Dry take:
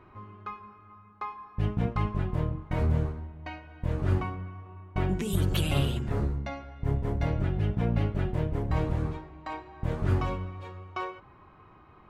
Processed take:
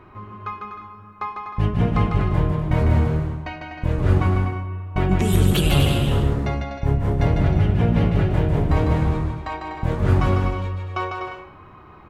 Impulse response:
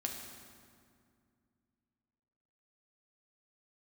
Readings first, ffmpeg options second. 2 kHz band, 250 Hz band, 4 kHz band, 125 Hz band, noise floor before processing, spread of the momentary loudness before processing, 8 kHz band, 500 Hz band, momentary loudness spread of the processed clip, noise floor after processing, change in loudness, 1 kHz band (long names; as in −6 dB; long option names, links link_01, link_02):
+10.0 dB, +10.0 dB, +9.5 dB, +9.5 dB, −55 dBFS, 14 LU, +9.5 dB, +9.5 dB, 14 LU, −45 dBFS, +9.5 dB, +9.5 dB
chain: -af "aecho=1:1:150|247.5|310.9|352.1|378.8:0.631|0.398|0.251|0.158|0.1,volume=7.5dB"